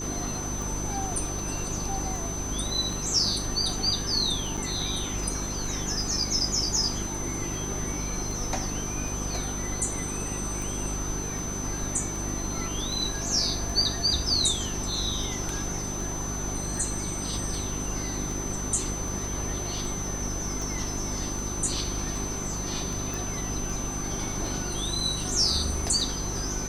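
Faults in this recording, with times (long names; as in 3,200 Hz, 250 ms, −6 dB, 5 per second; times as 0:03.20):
mains hum 50 Hz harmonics 8 −35 dBFS
scratch tick 78 rpm
whistle 6,100 Hz −34 dBFS
0:04.57–0:04.58: drop-out 5.6 ms
0:23.14: click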